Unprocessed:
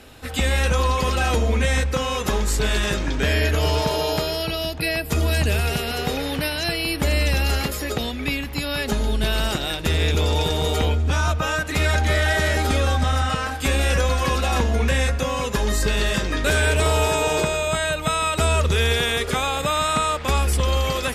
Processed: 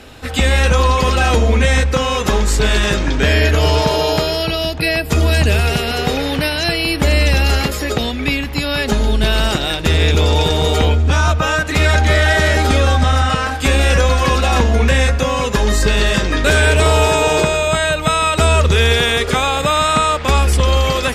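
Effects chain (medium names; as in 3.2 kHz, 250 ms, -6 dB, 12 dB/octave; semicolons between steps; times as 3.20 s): peaking EQ 12 kHz -7 dB 0.75 oct; trim +7 dB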